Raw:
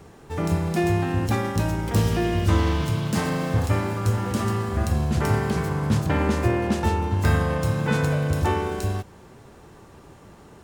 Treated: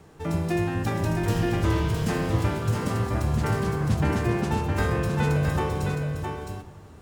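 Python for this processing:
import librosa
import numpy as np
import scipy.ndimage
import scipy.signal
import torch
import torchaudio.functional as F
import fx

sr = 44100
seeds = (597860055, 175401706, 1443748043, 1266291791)

p1 = fx.stretch_vocoder(x, sr, factor=0.66)
p2 = p1 + fx.echo_single(p1, sr, ms=663, db=-5.0, dry=0)
p3 = fx.room_shoebox(p2, sr, seeds[0], volume_m3=1200.0, walls='mixed', distance_m=0.53)
y = F.gain(torch.from_numpy(p3), -3.0).numpy()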